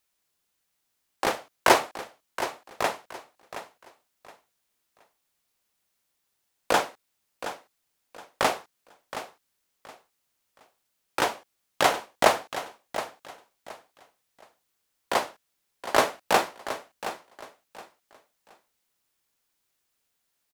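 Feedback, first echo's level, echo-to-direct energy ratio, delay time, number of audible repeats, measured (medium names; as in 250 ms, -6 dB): 26%, -12.0 dB, -11.5 dB, 721 ms, 2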